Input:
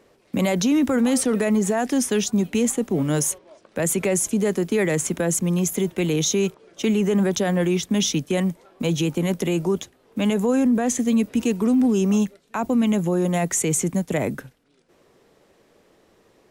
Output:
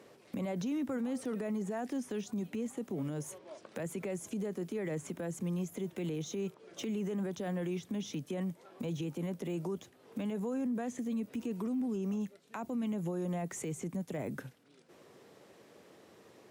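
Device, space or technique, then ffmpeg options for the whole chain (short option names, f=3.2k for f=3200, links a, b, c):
podcast mastering chain: -af "highpass=f=93:w=0.5412,highpass=f=93:w=1.3066,deesser=0.95,acompressor=threshold=-37dB:ratio=2,alimiter=level_in=4.5dB:limit=-24dB:level=0:latency=1:release=112,volume=-4.5dB" -ar 44100 -c:a libmp3lame -b:a 112k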